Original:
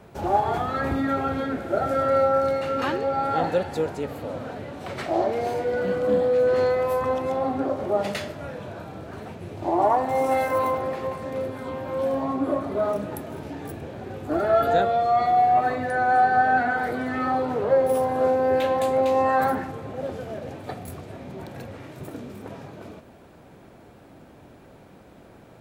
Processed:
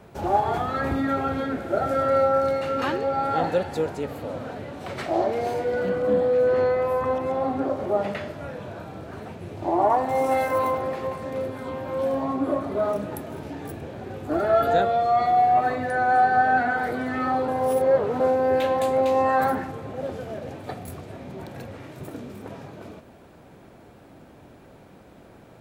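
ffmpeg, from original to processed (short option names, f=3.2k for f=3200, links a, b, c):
-filter_complex "[0:a]asettb=1/sr,asplit=3[a][b][c];[a]atrim=end=5.894[d];[b]atrim=start=5.89:end=9.9,asetpts=PTS-STARTPTS,afade=t=in:d=0.004:c=qsin,afade=t=out:st=4.006:d=0.004:c=qsin,acrossover=split=2700[e][f];[f]acompressor=threshold=-53dB:ratio=4:attack=1:release=60[g];[e][g]amix=inputs=2:normalize=0[h];[c]atrim=start=9.896[i];[d][h]acrossfade=d=0.004:c1=hsin:c2=qsin[j];[j][i]acrossfade=d=0.004:c1=qsin:c2=hsin,asplit=3[k][l][m];[k]atrim=end=17.482[n];[l]atrim=start=17.478:end=18.202,asetpts=PTS-STARTPTS,areverse[o];[m]atrim=start=18.198[p];[n][o]acrossfade=d=0.004:c1=hsin:c2=hsin[q];[q][p]acrossfade=d=0.004:c1=hsin:c2=hsin"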